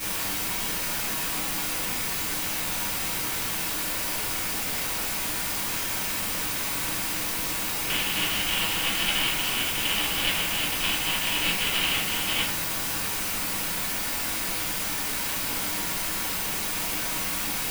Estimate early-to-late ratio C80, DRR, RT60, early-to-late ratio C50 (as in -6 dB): 7.0 dB, -14.0 dB, 0.55 s, 3.0 dB